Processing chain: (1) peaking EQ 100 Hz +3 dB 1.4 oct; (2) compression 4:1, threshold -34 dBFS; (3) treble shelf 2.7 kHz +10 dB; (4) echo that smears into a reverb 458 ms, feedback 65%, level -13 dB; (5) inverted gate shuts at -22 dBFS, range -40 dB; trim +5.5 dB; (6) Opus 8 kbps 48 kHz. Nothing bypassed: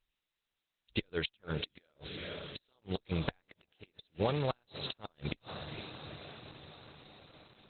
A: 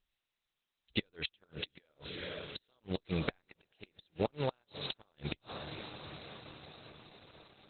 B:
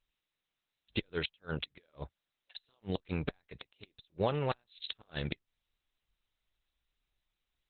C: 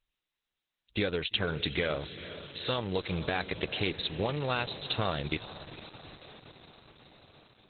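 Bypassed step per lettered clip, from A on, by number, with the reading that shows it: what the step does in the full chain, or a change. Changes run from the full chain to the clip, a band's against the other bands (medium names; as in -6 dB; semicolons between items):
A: 1, 125 Hz band -2.0 dB; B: 4, momentary loudness spread change -2 LU; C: 5, momentary loudness spread change -3 LU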